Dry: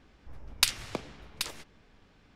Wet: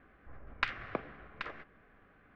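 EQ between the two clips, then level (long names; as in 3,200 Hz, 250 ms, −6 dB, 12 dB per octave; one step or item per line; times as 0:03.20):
Butterworth band-reject 900 Hz, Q 6.6
transistor ladder low-pass 2,100 Hz, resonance 35%
low-shelf EQ 260 Hz −6.5 dB
+8.0 dB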